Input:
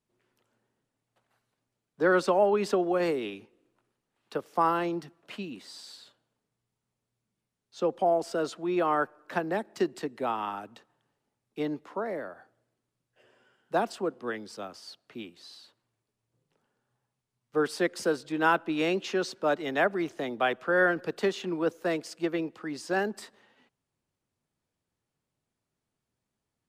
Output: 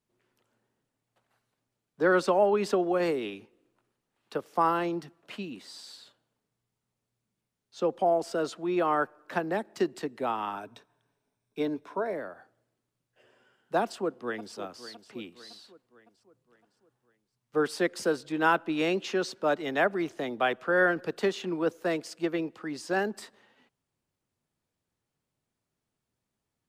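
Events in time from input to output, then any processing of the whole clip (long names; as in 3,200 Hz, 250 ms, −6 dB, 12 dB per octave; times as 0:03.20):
0:10.55–0:12.14: EQ curve with evenly spaced ripples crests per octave 1.6, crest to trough 8 dB
0:13.82–0:14.55: delay throw 560 ms, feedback 50%, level −13.5 dB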